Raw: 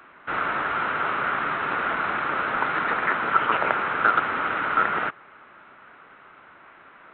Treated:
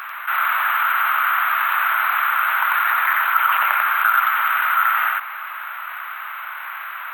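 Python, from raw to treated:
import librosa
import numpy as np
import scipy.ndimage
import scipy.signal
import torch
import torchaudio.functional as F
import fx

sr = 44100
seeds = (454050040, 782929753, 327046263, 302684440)

p1 = scipy.signal.sosfilt(scipy.signal.cheby2(4, 70, 220.0, 'highpass', fs=sr, output='sos'), x)
p2 = p1 + fx.echo_single(p1, sr, ms=93, db=-3.0, dry=0)
p3 = np.repeat(p2[::3], 3)[:len(p2)]
p4 = fx.env_flatten(p3, sr, amount_pct=50)
y = F.gain(torch.from_numpy(p4), 1.5).numpy()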